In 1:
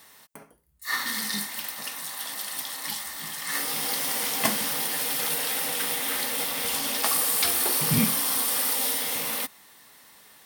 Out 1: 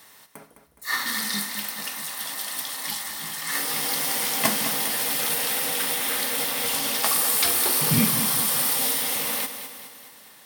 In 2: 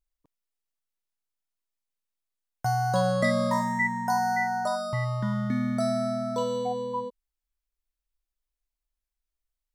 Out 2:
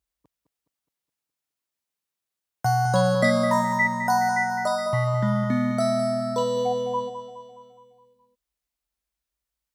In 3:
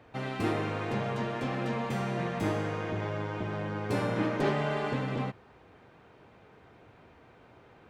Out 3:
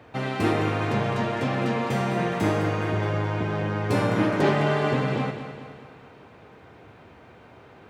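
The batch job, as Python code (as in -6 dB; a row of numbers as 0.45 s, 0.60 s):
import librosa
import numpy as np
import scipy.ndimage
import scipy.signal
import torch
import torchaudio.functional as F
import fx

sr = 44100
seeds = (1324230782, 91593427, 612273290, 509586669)

p1 = scipy.signal.sosfilt(scipy.signal.butter(4, 52.0, 'highpass', fs=sr, output='sos'), x)
p2 = p1 + fx.echo_feedback(p1, sr, ms=209, feedback_pct=53, wet_db=-10, dry=0)
y = p2 * 10.0 ** (-26 / 20.0) / np.sqrt(np.mean(np.square(p2)))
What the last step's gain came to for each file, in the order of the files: +2.0 dB, +4.5 dB, +6.5 dB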